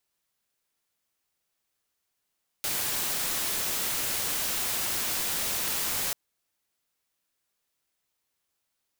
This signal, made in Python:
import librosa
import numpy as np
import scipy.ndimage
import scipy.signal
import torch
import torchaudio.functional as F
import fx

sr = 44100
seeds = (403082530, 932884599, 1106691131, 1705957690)

y = fx.noise_colour(sr, seeds[0], length_s=3.49, colour='white', level_db=-29.5)